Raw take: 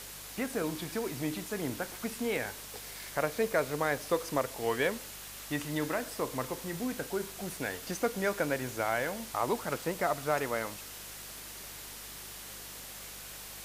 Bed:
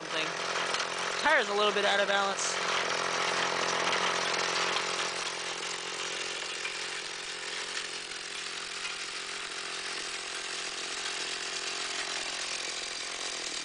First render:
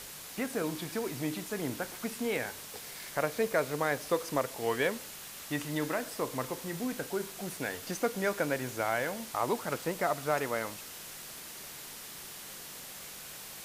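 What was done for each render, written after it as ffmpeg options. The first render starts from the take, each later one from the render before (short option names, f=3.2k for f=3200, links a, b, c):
-af "bandreject=f=50:t=h:w=4,bandreject=f=100:t=h:w=4"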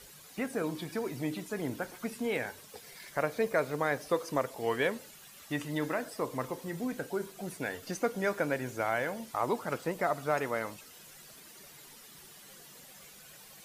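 -af "afftdn=nr=11:nf=-46"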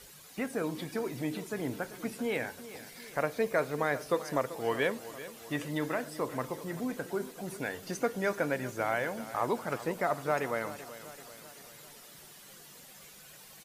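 -af "aecho=1:1:386|772|1158|1544|1930:0.178|0.096|0.0519|0.028|0.0151"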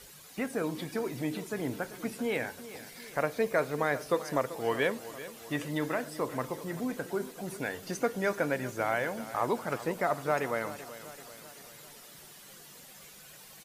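-af "volume=1dB"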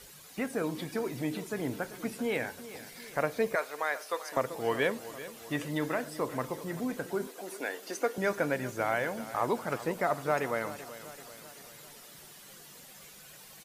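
-filter_complex "[0:a]asettb=1/sr,asplit=3[a][b][c];[a]atrim=end=3.554[d];[b]atrim=start=3.55:end=4.37,asetpts=PTS-STARTPTS,afade=t=in:d=0.004:c=qsin,afade=t=out:st=0.816:d=0.004:c=qsin,highpass=710[e];[c]atrim=start=4.366[f];[d][e]acrossfade=d=0.004:c1=hsin:c2=qsin[g];[g][f]acrossfade=d=0.004:c1=qsin:c2=hsin,asettb=1/sr,asplit=3[h][i][j];[h]atrim=end=7.274[k];[i]atrim=start=7.27:end=8.18,asetpts=PTS-STARTPTS,afade=t=in:d=0.004:c=qsin,afade=t=out:st=0.906:d=0.004:c=qsin,highpass=f=290:w=0.5412,highpass=f=290:w=1.3066[l];[j]atrim=start=8.176[m];[k][l]acrossfade=d=0.004:c1=hsin:c2=qsin[n];[n][m]acrossfade=d=0.004:c1=qsin:c2=hsin"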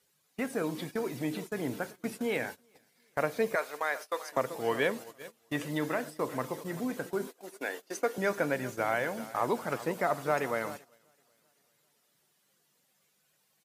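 -af "highpass=100,agate=range=-21dB:threshold=-40dB:ratio=16:detection=peak"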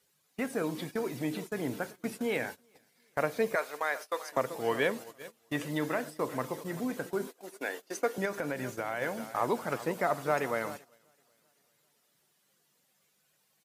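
-filter_complex "[0:a]asettb=1/sr,asplit=3[a][b][c];[a]atrim=end=8.254[d];[b]atrim=start=8.25:end=9.02,asetpts=PTS-STARTPTS,afade=t=in:d=0.004:c=qsin,afade=t=out:st=0.766:d=0.004:c=qsin,acompressor=threshold=-29dB:ratio=6:attack=3.2:release=140:knee=1:detection=peak[e];[c]atrim=start=9.016[f];[d][e]acrossfade=d=0.004:c1=hsin:c2=qsin[g];[g][f]acrossfade=d=0.004:c1=qsin:c2=hsin"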